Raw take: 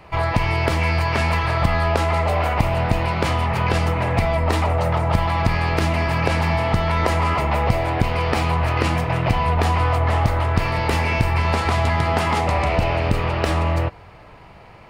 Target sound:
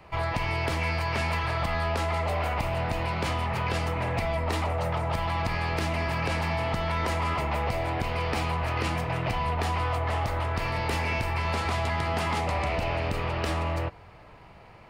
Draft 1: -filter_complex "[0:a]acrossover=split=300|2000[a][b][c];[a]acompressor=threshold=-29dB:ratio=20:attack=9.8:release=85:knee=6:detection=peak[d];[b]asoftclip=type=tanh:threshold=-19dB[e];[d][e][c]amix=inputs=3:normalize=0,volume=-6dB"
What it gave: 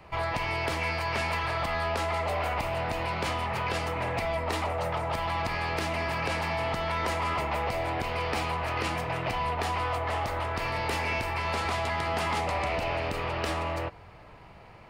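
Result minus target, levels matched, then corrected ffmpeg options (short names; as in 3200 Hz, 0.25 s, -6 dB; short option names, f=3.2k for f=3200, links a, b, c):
compressor: peak gain reduction +7 dB
-filter_complex "[0:a]acrossover=split=300|2000[a][b][c];[a]acompressor=threshold=-21.5dB:ratio=20:attack=9.8:release=85:knee=6:detection=peak[d];[b]asoftclip=type=tanh:threshold=-19dB[e];[d][e][c]amix=inputs=3:normalize=0,volume=-6dB"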